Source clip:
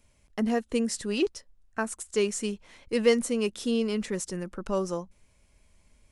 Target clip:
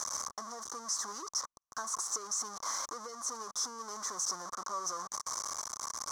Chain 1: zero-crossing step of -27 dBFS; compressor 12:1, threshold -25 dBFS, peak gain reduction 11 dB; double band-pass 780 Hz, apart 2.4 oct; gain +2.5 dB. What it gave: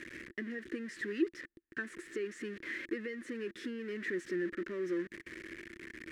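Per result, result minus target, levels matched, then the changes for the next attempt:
1000 Hz band -17.0 dB; zero-crossing step: distortion -6 dB
change: double band-pass 2600 Hz, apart 2.4 oct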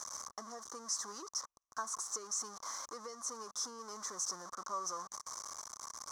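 zero-crossing step: distortion -6 dB
change: zero-crossing step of -17.5 dBFS

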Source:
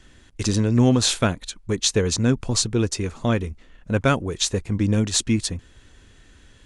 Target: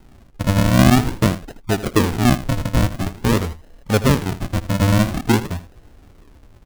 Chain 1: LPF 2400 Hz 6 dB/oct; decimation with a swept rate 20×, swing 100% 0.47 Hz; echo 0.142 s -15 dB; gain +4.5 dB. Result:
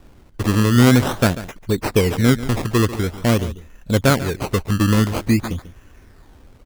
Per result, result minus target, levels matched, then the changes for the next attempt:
echo 62 ms late; decimation with a swept rate: distortion -15 dB
change: echo 80 ms -15 dB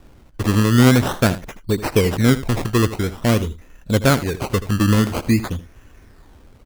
decimation with a swept rate: distortion -15 dB
change: decimation with a swept rate 75×, swing 100% 0.47 Hz

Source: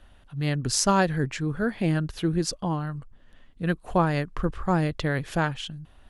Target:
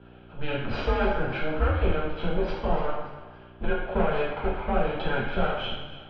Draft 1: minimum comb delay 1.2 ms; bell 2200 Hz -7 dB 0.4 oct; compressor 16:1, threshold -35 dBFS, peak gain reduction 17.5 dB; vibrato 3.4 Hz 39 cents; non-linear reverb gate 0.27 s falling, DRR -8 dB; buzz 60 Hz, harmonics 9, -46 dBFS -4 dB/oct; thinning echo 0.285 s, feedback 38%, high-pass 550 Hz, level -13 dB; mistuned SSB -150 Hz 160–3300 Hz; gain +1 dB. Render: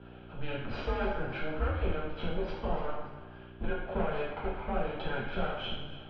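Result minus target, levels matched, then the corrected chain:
compressor: peak gain reduction +7.5 dB
minimum comb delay 1.2 ms; bell 2200 Hz -7 dB 0.4 oct; compressor 16:1, threshold -27 dBFS, peak gain reduction 10 dB; vibrato 3.4 Hz 39 cents; non-linear reverb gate 0.27 s falling, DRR -8 dB; buzz 60 Hz, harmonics 9, -46 dBFS -4 dB/oct; thinning echo 0.285 s, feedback 38%, high-pass 550 Hz, level -13 dB; mistuned SSB -150 Hz 160–3300 Hz; gain +1 dB

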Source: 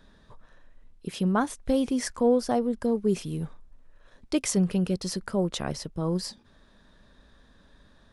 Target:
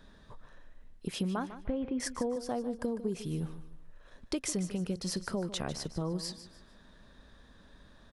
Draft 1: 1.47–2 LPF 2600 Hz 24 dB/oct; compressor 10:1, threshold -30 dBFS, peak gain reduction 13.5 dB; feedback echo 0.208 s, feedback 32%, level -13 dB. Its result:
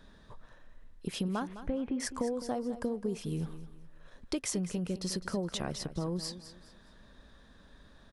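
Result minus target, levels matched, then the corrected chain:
echo 58 ms late
1.47–2 LPF 2600 Hz 24 dB/oct; compressor 10:1, threshold -30 dBFS, peak gain reduction 13.5 dB; feedback echo 0.15 s, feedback 32%, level -13 dB

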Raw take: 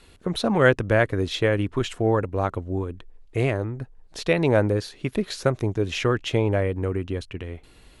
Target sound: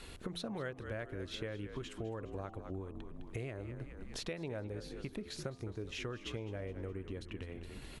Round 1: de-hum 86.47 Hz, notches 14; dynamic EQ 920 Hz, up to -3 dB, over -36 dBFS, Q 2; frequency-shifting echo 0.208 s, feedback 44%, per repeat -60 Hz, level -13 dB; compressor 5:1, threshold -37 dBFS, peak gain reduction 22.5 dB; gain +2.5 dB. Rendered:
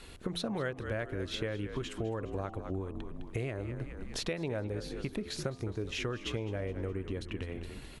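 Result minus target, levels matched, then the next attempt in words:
compressor: peak gain reduction -6 dB
de-hum 86.47 Hz, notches 14; dynamic EQ 920 Hz, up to -3 dB, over -36 dBFS, Q 2; frequency-shifting echo 0.208 s, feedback 44%, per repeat -60 Hz, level -13 dB; compressor 5:1, threshold -44.5 dBFS, peak gain reduction 28.5 dB; gain +2.5 dB

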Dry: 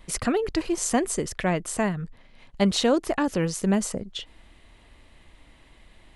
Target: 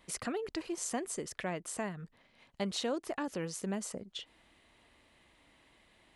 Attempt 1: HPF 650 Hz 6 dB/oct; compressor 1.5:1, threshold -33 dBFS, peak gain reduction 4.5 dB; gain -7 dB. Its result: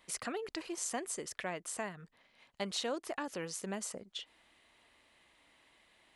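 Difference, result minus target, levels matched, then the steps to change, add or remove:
250 Hz band -3.5 dB
change: HPF 210 Hz 6 dB/oct

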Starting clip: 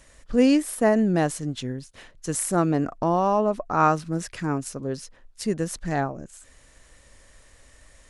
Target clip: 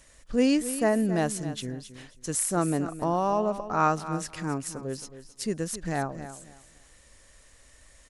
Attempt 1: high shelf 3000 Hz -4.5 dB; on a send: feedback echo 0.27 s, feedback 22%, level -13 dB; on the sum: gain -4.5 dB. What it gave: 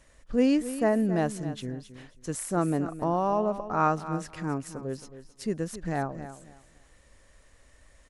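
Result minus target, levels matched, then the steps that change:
8000 Hz band -8.0 dB
change: high shelf 3000 Hz +5 dB

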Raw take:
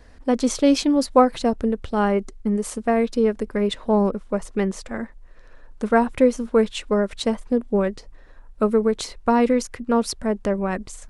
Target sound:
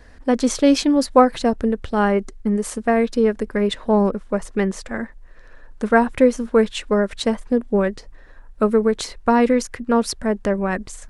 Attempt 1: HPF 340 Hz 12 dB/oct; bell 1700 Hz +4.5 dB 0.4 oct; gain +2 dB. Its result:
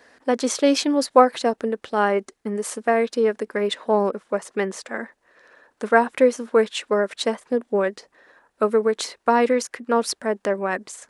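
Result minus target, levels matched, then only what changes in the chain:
250 Hz band -4.5 dB
remove: HPF 340 Hz 12 dB/oct

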